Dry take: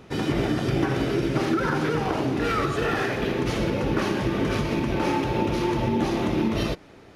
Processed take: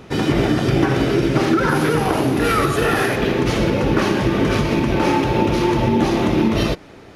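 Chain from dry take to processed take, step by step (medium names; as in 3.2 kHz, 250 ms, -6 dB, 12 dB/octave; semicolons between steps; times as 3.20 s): 1.69–3.16 s: peaking EQ 11 kHz +15 dB 0.46 oct; trim +7 dB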